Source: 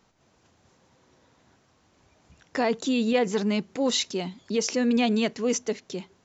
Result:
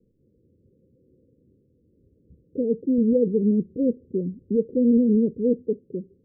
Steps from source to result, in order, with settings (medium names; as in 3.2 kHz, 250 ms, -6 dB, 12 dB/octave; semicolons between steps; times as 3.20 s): steep low-pass 520 Hz 96 dB/octave; 2.98–5.62 s: bass shelf 100 Hz +11 dB; trim +3.5 dB